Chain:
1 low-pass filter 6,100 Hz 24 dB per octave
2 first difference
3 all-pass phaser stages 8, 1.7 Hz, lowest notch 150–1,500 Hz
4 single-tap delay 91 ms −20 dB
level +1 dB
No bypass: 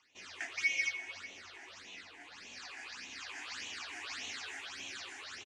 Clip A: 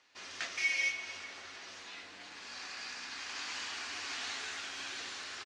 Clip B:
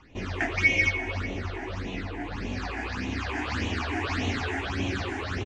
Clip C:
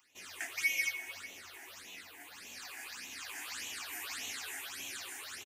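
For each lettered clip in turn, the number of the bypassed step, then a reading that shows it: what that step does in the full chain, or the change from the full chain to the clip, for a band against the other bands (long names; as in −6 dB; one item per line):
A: 3, change in crest factor −3.0 dB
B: 2, 125 Hz band +23.5 dB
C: 1, 8 kHz band +5.5 dB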